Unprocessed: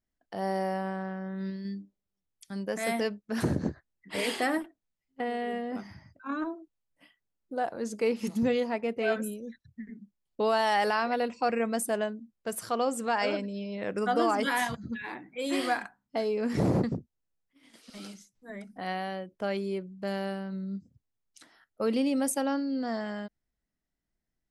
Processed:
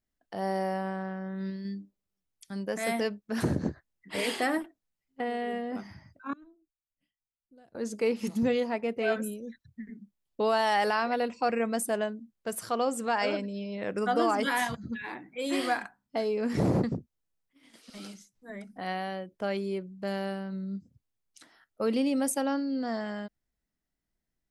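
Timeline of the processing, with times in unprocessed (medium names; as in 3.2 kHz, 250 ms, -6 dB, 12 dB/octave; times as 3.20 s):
6.33–7.75 s: amplifier tone stack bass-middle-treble 10-0-1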